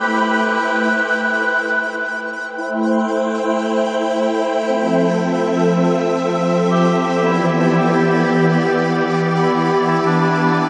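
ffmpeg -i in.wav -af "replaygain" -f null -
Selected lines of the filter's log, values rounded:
track_gain = -0.4 dB
track_peak = 0.495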